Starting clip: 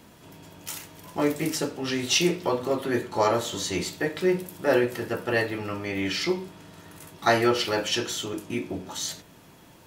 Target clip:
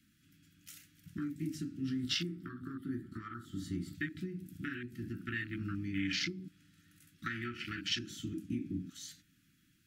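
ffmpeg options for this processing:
ffmpeg -i in.wav -filter_complex "[0:a]afwtdn=0.0316,asettb=1/sr,asplit=3[link_01][link_02][link_03];[link_01]atrim=end=1.894[link_04];[link_02]atrim=start=1.89:end=3.95,asetpts=PTS-STARTPTS,afade=type=in:duration=0.004:curve=qsin,afade=type=out:start_time=2.056:duration=0.004:curve=qsin,equalizer=frequency=800:width_type=o:width=0.33:gain=7,equalizer=frequency=1250:width_type=o:width=0.33:gain=10,equalizer=frequency=2500:width_type=o:width=0.33:gain=-11,equalizer=frequency=4000:width_type=o:width=0.33:gain=-5,equalizer=frequency=6300:width_type=o:width=0.33:gain=-10[link_05];[link_03]atrim=start=3.946[link_06];[link_04][link_05]acrossfade=duration=0.004:curve1=hsin:curve2=qsin[link_07];[link_07][link_06]acrossfade=duration=0.004:curve1=qsin:curve2=hsin,acompressor=threshold=-30dB:ratio=12,asuperstop=centerf=660:order=12:qfactor=0.62" out.wav

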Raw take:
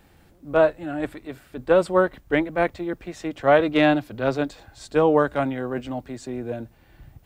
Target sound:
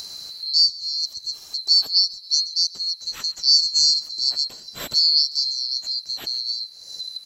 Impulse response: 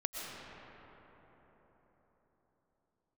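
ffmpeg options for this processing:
-filter_complex "[0:a]afftfilt=real='real(if(lt(b,736),b+184*(1-2*mod(floor(b/184),2)),b),0)':imag='imag(if(lt(b,736),b+184*(1-2*mod(floor(b/184),2)),b),0)':win_size=2048:overlap=0.75,acompressor=mode=upward:threshold=-20dB:ratio=2.5,asplit=5[link_01][link_02][link_03][link_04][link_05];[link_02]adelay=134,afreqshift=-43,volume=-21dB[link_06];[link_03]adelay=268,afreqshift=-86,volume=-26.8dB[link_07];[link_04]adelay=402,afreqshift=-129,volume=-32.7dB[link_08];[link_05]adelay=536,afreqshift=-172,volume=-38.5dB[link_09];[link_01][link_06][link_07][link_08][link_09]amix=inputs=5:normalize=0"

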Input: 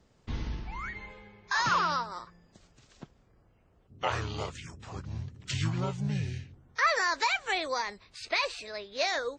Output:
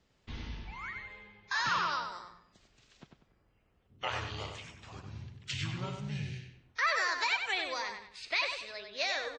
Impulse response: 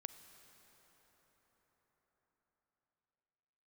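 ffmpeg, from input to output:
-filter_complex "[0:a]equalizer=frequency=2900:width_type=o:width=1.9:gain=8,asplit=2[link_01][link_02];[link_02]adelay=96,lowpass=frequency=4800:poles=1,volume=-5.5dB,asplit=2[link_03][link_04];[link_04]adelay=96,lowpass=frequency=4800:poles=1,volume=0.36,asplit=2[link_05][link_06];[link_06]adelay=96,lowpass=frequency=4800:poles=1,volume=0.36,asplit=2[link_07][link_08];[link_08]adelay=96,lowpass=frequency=4800:poles=1,volume=0.36[link_09];[link_03][link_05][link_07][link_09]amix=inputs=4:normalize=0[link_10];[link_01][link_10]amix=inputs=2:normalize=0,volume=-8.5dB"

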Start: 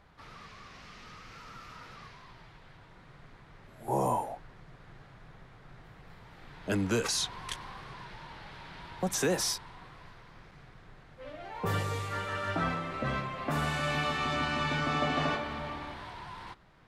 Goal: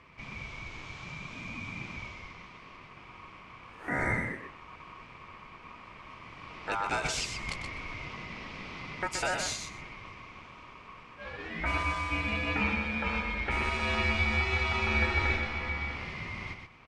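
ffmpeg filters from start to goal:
ffmpeg -i in.wav -filter_complex "[0:a]lowpass=frequency=8100:width=0.5412,lowpass=frequency=8100:width=1.3066,equalizer=frequency=1200:width=2.7:gain=11.5,asplit=2[link_01][link_02];[link_02]acompressor=threshold=-36dB:ratio=6,volume=2.5dB[link_03];[link_01][link_03]amix=inputs=2:normalize=0,aeval=exprs='val(0)*sin(2*PI*1100*n/s)':channel_layout=same,aecho=1:1:125|250|375:0.473|0.0757|0.0121,volume=-4dB" out.wav

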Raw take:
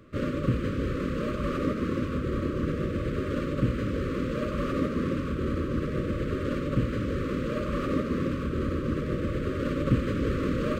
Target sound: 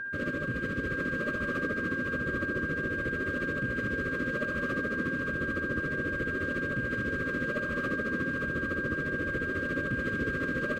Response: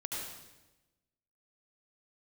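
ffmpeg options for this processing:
-af "lowshelf=frequency=100:gain=-9,alimiter=limit=-22.5dB:level=0:latency=1:release=53,tremolo=f=14:d=0.66,aeval=exprs='val(0)+0.02*sin(2*PI*1600*n/s)':channel_layout=same,aecho=1:1:870:0.282"

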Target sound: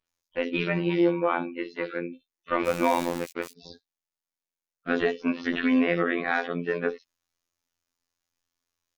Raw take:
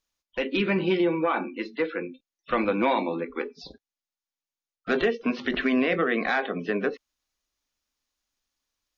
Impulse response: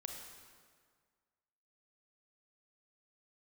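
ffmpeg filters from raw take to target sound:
-filter_complex "[0:a]asplit=3[link_01][link_02][link_03];[link_01]afade=type=out:start_time=2.59:duration=0.02[link_04];[link_02]aeval=exprs='val(0)*gte(abs(val(0)),0.0355)':channel_layout=same,afade=type=in:start_time=2.59:duration=0.02,afade=type=out:start_time=3.51:duration=0.02[link_05];[link_03]afade=type=in:start_time=3.51:duration=0.02[link_06];[link_04][link_05][link_06]amix=inputs=3:normalize=0,acrossover=split=3800[link_07][link_08];[link_08]adelay=60[link_09];[link_07][link_09]amix=inputs=2:normalize=0,afftfilt=real='hypot(re,im)*cos(PI*b)':imag='0':win_size=2048:overlap=0.75,volume=2.5dB"

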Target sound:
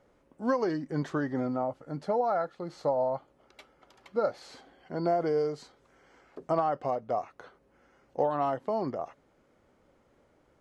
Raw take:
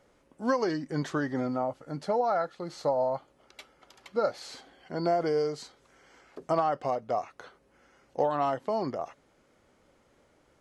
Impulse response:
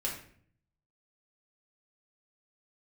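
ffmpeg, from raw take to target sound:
-af "highshelf=frequency=2200:gain=-8.5"

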